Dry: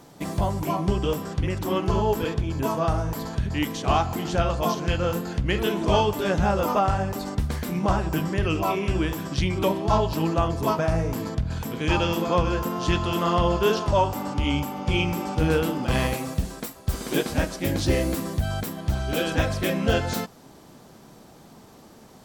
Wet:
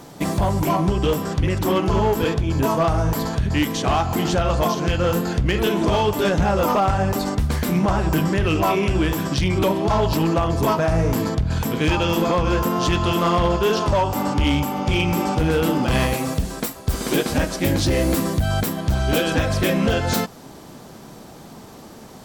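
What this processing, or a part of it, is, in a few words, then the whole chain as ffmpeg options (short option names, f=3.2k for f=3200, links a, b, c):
limiter into clipper: -af "alimiter=limit=-16.5dB:level=0:latency=1:release=190,asoftclip=type=hard:threshold=-21dB,volume=8dB"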